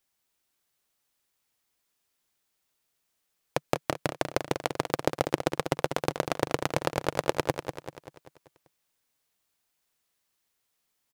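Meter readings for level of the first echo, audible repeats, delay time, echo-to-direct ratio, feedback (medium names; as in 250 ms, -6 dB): -8.0 dB, 5, 194 ms, -7.0 dB, 50%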